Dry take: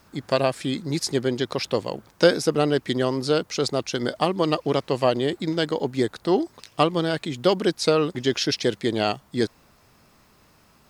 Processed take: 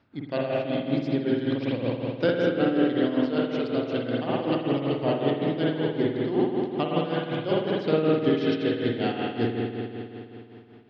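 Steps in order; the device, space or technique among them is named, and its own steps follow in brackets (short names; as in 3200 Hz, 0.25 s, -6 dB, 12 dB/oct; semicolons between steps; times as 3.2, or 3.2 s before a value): combo amplifier with spring reverb and tremolo (spring tank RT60 3 s, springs 51 ms, chirp 35 ms, DRR -6 dB; tremolo 5.3 Hz, depth 63%; speaker cabinet 77–3700 Hz, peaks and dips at 110 Hz +8 dB, 270 Hz +7 dB, 1100 Hz -6 dB); gain -7.5 dB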